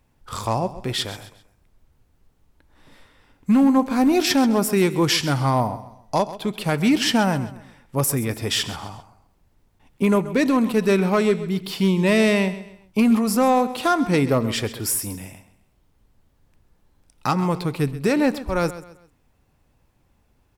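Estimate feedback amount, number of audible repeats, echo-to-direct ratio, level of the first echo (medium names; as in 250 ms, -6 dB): 35%, 3, -14.5 dB, -15.0 dB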